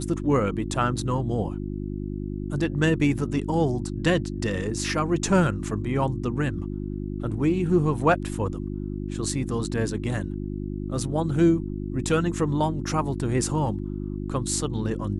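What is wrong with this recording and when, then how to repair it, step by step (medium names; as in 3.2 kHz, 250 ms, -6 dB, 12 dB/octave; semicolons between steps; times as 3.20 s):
hum 50 Hz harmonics 7 -31 dBFS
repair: de-hum 50 Hz, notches 7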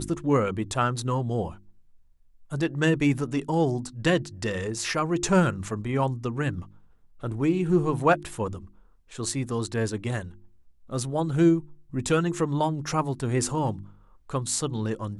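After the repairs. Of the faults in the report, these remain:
nothing left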